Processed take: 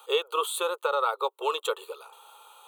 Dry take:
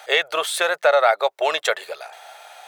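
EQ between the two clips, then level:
elliptic high-pass filter 240 Hz, stop band 40 dB
phaser with its sweep stopped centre 410 Hz, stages 8
phaser with its sweep stopped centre 1,100 Hz, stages 8
0.0 dB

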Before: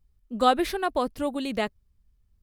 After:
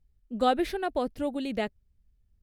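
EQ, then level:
parametric band 1,100 Hz −8.5 dB 0.51 octaves
high-shelf EQ 3,700 Hz −7.5 dB
−1.5 dB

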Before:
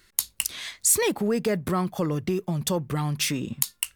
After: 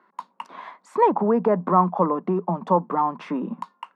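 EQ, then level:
Chebyshev high-pass with heavy ripple 170 Hz, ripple 3 dB
low-pass with resonance 1,000 Hz, resonance Q 4.9
+4.5 dB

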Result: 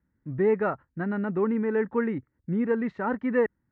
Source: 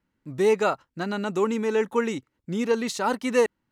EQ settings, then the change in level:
high-pass filter 59 Hz
low-pass with resonance 1,800 Hz, resonance Q 4
spectral tilt −4.5 dB per octave
−8.5 dB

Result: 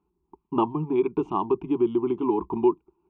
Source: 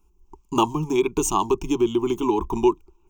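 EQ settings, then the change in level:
high-pass filter 140 Hz 12 dB per octave
high-frequency loss of the air 440 metres
head-to-tape spacing loss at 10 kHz 26 dB
0.0 dB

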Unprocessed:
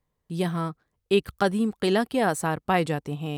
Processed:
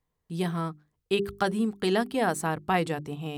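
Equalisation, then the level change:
mains-hum notches 50/100/150/200/250/300/350/400 Hz
notch filter 560 Hz, Q 12
−2.0 dB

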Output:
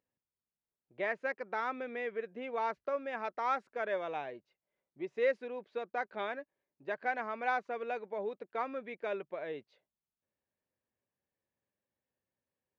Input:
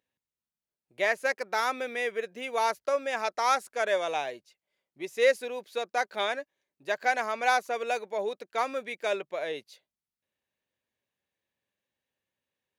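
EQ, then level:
high-shelf EQ 3,900 Hz −11.5 dB
dynamic equaliser 620 Hz, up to −6 dB, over −38 dBFS, Q 0.98
head-to-tape spacing loss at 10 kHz 31 dB
0.0 dB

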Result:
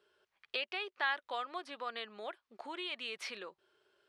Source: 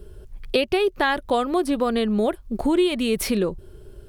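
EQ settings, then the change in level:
high-pass filter 1,300 Hz 12 dB per octave
head-to-tape spacing loss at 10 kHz 36 dB
high-shelf EQ 3,100 Hz +11 dB
−4.5 dB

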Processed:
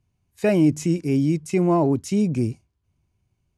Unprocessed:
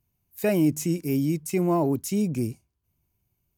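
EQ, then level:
Butterworth low-pass 12,000 Hz 48 dB per octave
high-frequency loss of the air 61 metres
parametric band 95 Hz +2.5 dB
+4.0 dB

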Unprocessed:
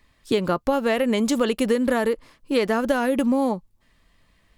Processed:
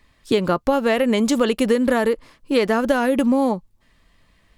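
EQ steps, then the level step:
high-shelf EQ 11,000 Hz −3.5 dB
+3.0 dB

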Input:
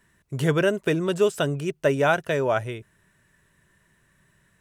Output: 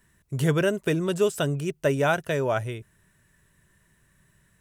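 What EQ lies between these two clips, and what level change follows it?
low-shelf EQ 160 Hz +7 dB
high-shelf EQ 6,700 Hz +8 dB
−3.0 dB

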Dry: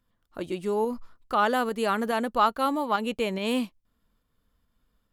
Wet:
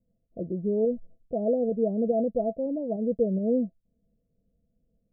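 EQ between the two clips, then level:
Chebyshev low-pass with heavy ripple 690 Hz, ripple 9 dB
+6.5 dB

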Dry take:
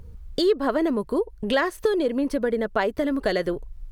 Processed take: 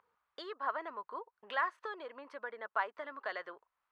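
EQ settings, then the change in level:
four-pole ladder band-pass 1,300 Hz, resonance 45%
+2.0 dB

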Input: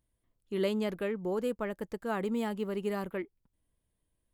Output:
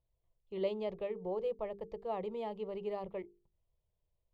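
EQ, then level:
high-frequency loss of the air 290 metres
mains-hum notches 50/100/150/200/250/300/350/400/450 Hz
phaser with its sweep stopped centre 630 Hz, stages 4
0.0 dB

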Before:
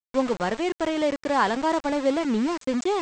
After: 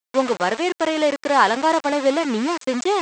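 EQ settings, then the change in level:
high-pass filter 470 Hz 6 dB per octave
+7.5 dB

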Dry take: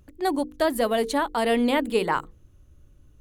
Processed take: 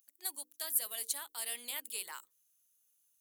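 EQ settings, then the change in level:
first difference
spectral tilt +1.5 dB per octave
high-shelf EQ 6,300 Hz +8.5 dB
−8.0 dB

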